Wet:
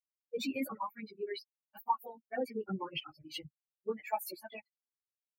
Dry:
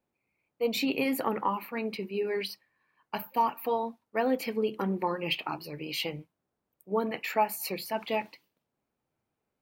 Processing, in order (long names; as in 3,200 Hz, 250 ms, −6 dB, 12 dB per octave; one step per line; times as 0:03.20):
spectral dynamics exaggerated over time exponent 3
time stretch by phase vocoder 0.56×
level +1.5 dB